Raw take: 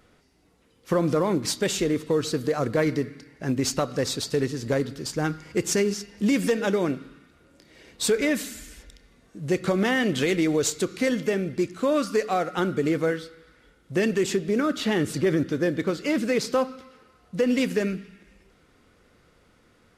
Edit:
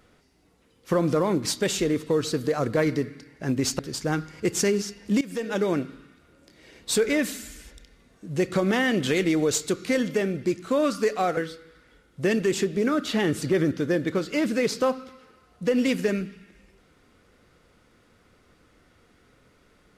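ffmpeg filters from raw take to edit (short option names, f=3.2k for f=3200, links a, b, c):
-filter_complex "[0:a]asplit=4[a][b][c][d];[a]atrim=end=3.792[e];[b]atrim=start=4.908:end=6.33,asetpts=PTS-STARTPTS,afade=t=out:st=1.418:d=0.004:c=hsin:silence=0.1[f];[c]atrim=start=6.33:end=12.492,asetpts=PTS-STARTPTS,afade=t=in:d=0.46:silence=0.1[g];[d]atrim=start=13.088[h];[f][g]concat=n=2:v=0:a=1[i];[e][i]acrossfade=d=0.004:c1=hsin:c2=hsin[j];[j][h]acrossfade=d=0.004:c1=hsin:c2=hsin"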